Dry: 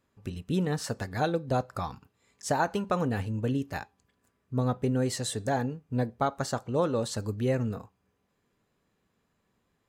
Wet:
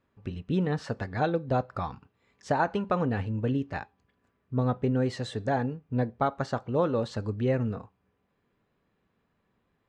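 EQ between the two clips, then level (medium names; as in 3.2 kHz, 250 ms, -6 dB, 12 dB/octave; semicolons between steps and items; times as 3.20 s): low-pass 3.2 kHz 12 dB/octave; +1.0 dB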